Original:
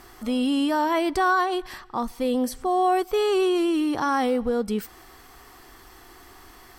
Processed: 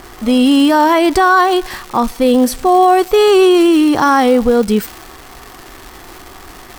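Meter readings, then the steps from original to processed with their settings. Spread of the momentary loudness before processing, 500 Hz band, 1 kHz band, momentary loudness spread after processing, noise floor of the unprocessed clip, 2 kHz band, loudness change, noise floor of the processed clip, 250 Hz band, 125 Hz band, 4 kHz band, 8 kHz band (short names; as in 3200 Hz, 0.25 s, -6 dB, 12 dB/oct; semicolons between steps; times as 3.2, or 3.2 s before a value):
10 LU, +12.5 dB, +12.0 dB, 9 LU, -49 dBFS, +11.5 dB, +12.5 dB, -37 dBFS, +13.0 dB, n/a, +13.0 dB, +13.5 dB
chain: crackle 390/s -33 dBFS; maximiser +14 dB; mismatched tape noise reduction decoder only; gain -1 dB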